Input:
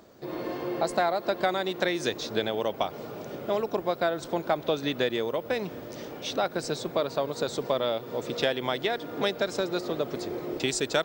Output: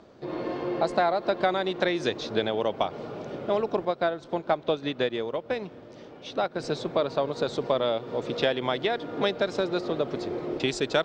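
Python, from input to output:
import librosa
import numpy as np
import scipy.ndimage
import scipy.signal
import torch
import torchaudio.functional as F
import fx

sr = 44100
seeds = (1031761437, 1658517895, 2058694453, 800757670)

y = scipy.signal.sosfilt(scipy.signal.butter(2, 4200.0, 'lowpass', fs=sr, output='sos'), x)
y = fx.peak_eq(y, sr, hz=1900.0, db=-2.0, octaves=0.77)
y = fx.upward_expand(y, sr, threshold_db=-38.0, expansion=1.5, at=(3.85, 6.6))
y = F.gain(torch.from_numpy(y), 2.0).numpy()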